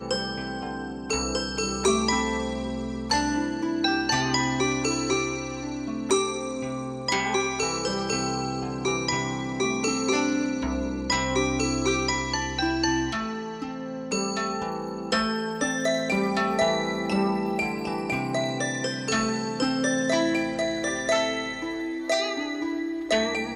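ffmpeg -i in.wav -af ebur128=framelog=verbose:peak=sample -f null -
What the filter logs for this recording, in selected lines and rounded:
Integrated loudness:
  I:         -26.3 LUFS
  Threshold: -36.3 LUFS
Loudness range:
  LRA:         1.8 LU
  Threshold: -46.2 LUFS
  LRA low:   -27.1 LUFS
  LRA high:  -25.3 LUFS
Sample peak:
  Peak:       -9.8 dBFS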